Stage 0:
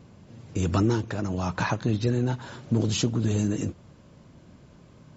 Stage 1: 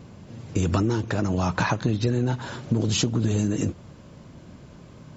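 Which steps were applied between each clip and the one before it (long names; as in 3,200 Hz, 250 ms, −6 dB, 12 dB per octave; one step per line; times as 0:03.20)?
downward compressor, threshold −25 dBFS, peak gain reduction 7 dB
level +6 dB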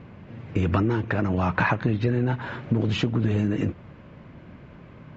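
low-pass with resonance 2,200 Hz, resonance Q 1.7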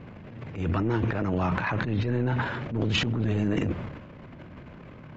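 brickwall limiter −18 dBFS, peak gain reduction 10 dB
transient designer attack −11 dB, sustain +11 dB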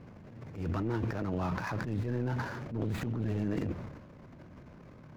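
running median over 15 samples
level −6.5 dB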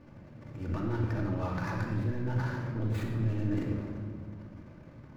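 rectangular room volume 2,200 cubic metres, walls mixed, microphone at 2.5 metres
level −4.5 dB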